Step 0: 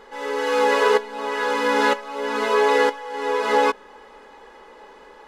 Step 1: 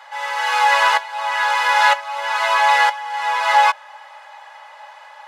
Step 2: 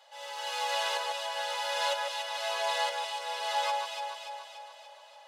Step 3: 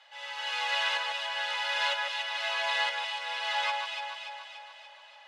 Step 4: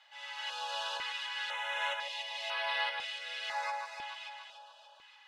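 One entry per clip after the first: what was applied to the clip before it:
rippled Chebyshev high-pass 580 Hz, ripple 3 dB; gain +8 dB
band shelf 1400 Hz -13 dB; echo with dull and thin repeats by turns 0.145 s, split 1900 Hz, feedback 75%, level -2 dB; gain -9 dB
band-pass 2100 Hz, Q 1.3; gain +7 dB
stepped notch 2 Hz 420–7000 Hz; gain -4 dB

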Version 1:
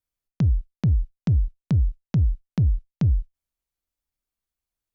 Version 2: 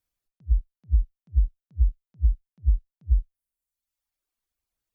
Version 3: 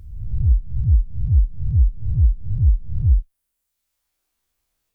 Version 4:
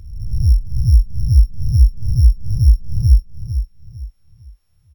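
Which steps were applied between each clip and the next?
reverb removal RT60 0.98 s; attack slew limiter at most 600 dB/s; gain +4 dB
spectral swells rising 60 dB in 0.95 s; in parallel at +2.5 dB: compressor, threshold -26 dBFS, peak gain reduction 11.5 dB; on the sum: gain +1 dB
sample sorter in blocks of 8 samples; feedback echo 0.452 s, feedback 32%, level -9.5 dB; gain +3.5 dB

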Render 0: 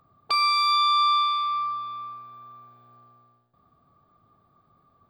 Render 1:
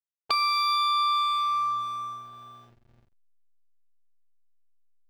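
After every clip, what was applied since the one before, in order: compressor 2.5:1, threshold -27 dBFS, peak gain reduction 6.5 dB; backlash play -42.5 dBFS; gain +3 dB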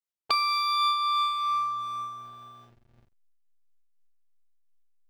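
noise-modulated level, depth 55%; gain +1.5 dB

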